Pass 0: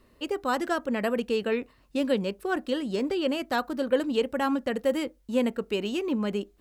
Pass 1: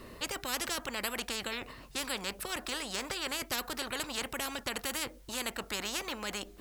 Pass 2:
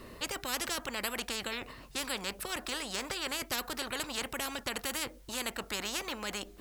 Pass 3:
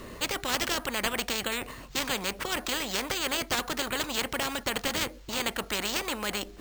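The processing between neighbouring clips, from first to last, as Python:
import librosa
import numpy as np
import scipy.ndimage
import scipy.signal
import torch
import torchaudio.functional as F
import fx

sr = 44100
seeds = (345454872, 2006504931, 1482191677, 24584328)

y1 = fx.spectral_comp(x, sr, ratio=4.0)
y1 = F.gain(torch.from_numpy(y1), -2.5).numpy()
y2 = y1
y3 = np.repeat(y2[::4], 4)[:len(y2)]
y3 = F.gain(torch.from_numpy(y3), 6.0).numpy()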